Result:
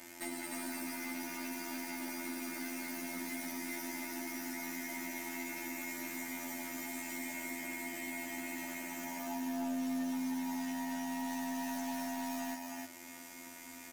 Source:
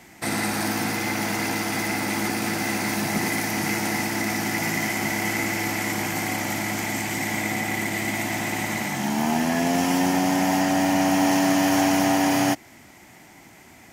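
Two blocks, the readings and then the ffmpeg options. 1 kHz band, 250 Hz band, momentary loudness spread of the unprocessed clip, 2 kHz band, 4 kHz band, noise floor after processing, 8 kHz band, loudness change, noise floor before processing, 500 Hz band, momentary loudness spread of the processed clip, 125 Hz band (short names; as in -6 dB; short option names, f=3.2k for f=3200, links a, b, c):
-18.5 dB, -15.5 dB, 6 LU, -17.0 dB, -18.5 dB, -51 dBFS, -14.5 dB, -16.5 dB, -49 dBFS, -19.0 dB, 4 LU, -29.0 dB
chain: -af "afftfilt=real='hypot(re,im)*cos(PI*b)':imag='0':win_size=2048:overlap=0.75,asoftclip=type=tanh:threshold=-11.5dB,equalizer=f=66:t=o:w=1.1:g=-14.5,acompressor=threshold=-37dB:ratio=6,highshelf=f=7.7k:g=9.5,aecho=1:1:3.3:0.92,aecho=1:1:306:0.668,asoftclip=type=hard:threshold=-28.5dB,volume=-3.5dB"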